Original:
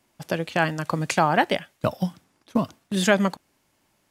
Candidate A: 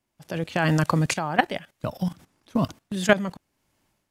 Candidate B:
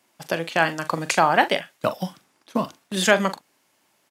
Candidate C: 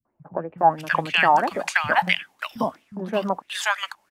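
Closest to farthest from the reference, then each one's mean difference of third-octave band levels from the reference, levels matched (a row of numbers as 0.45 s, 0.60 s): B, A, C; 3.0 dB, 4.5 dB, 11.5 dB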